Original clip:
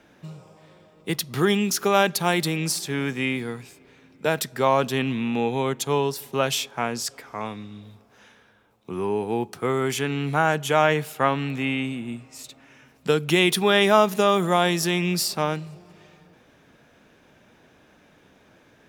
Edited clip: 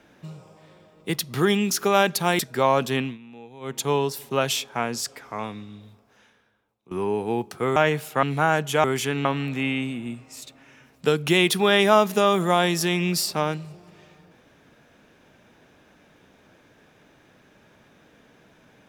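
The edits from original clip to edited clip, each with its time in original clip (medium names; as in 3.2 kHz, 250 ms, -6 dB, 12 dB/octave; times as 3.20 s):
2.39–4.41 s: delete
5.01–5.81 s: dip -19.5 dB, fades 0.19 s
7.53–8.93 s: fade out, to -19.5 dB
9.78–10.19 s: swap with 10.80–11.27 s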